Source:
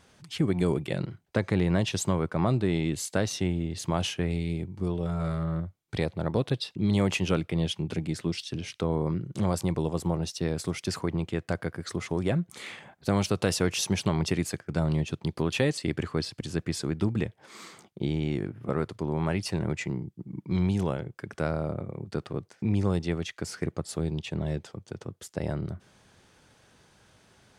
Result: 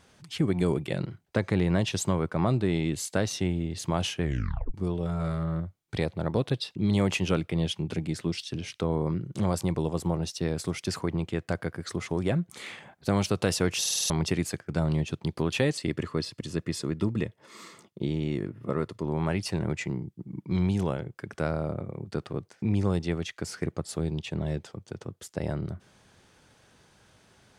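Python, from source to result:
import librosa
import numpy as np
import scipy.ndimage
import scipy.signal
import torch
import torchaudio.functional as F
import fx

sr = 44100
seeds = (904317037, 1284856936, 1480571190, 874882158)

y = fx.notch_comb(x, sr, f0_hz=780.0, at=(15.88, 19.06))
y = fx.edit(y, sr, fx.tape_stop(start_s=4.22, length_s=0.52),
    fx.stutter_over(start_s=13.8, slice_s=0.05, count=6), tone=tone)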